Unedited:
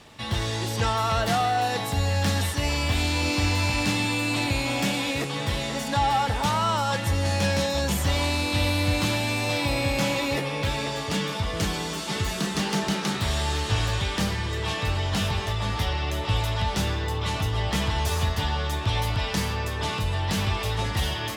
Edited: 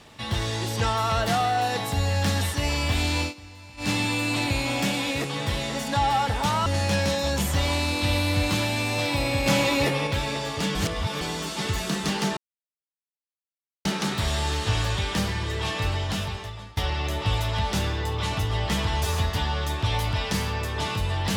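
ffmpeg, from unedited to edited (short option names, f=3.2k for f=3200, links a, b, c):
-filter_complex "[0:a]asplit=10[a][b][c][d][e][f][g][h][i][j];[a]atrim=end=3.34,asetpts=PTS-STARTPTS,afade=t=out:st=3.21:d=0.13:silence=0.0891251[k];[b]atrim=start=3.34:end=3.77,asetpts=PTS-STARTPTS,volume=-21dB[l];[c]atrim=start=3.77:end=6.662,asetpts=PTS-STARTPTS,afade=t=in:d=0.13:silence=0.0891251[m];[d]atrim=start=7.168:end=9.972[n];[e]atrim=start=9.968:end=10.582,asetpts=PTS-STARTPTS,volume=3.5dB[o];[f]atrim=start=10.578:end=11.262[p];[g]atrim=start=11.258:end=11.722,asetpts=PTS-STARTPTS,areverse[q];[h]atrim=start=11.718:end=12.88,asetpts=PTS-STARTPTS,afade=t=out:st=1.158:d=0.004:c=hsin,apad=pad_dur=1.48[r];[i]atrim=start=12.88:end=15.8,asetpts=PTS-STARTPTS,afade=t=in:d=0.004:c=hsin,afade=t=out:st=2.05:d=0.87:silence=0.0707946[s];[j]atrim=start=15.8,asetpts=PTS-STARTPTS,afade=t=in:d=0.004:c=hsin:silence=0.0707946[t];[k][l][m]concat=n=3:v=0:a=1[u];[u][n]acrossfade=d=0.004:c1=hsin:c2=hsin[v];[v][o]acrossfade=d=0.004:c1=hsin:c2=hsin[w];[w][p]acrossfade=d=0.004:c1=hsin:c2=hsin[x];[x][q]acrossfade=d=0.004:c1=hsin:c2=hsin[y];[r][s][t]concat=n=3:v=0:a=1[z];[y][z]acrossfade=d=0.004:c1=hsin:c2=hsin"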